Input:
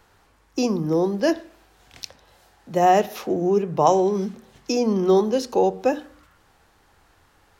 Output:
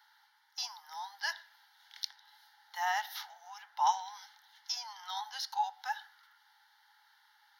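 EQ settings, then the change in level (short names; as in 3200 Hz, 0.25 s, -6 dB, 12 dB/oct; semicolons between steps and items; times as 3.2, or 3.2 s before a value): rippled Chebyshev high-pass 830 Hz, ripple 3 dB; fixed phaser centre 1700 Hz, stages 8; 0.0 dB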